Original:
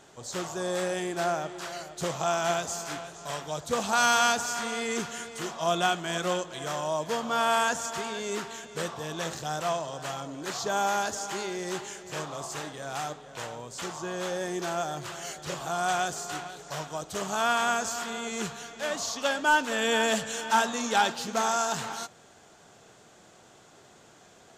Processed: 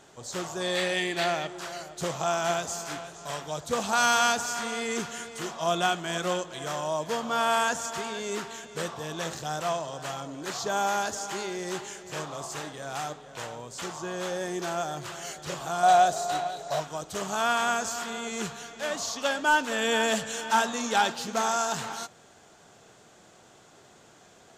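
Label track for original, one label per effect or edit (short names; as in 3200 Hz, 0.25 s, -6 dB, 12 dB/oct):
0.610000	1.470000	spectral gain 1700–4800 Hz +10 dB
15.830000	16.800000	small resonant body resonances 660/3900 Hz, height 15 dB, ringing for 25 ms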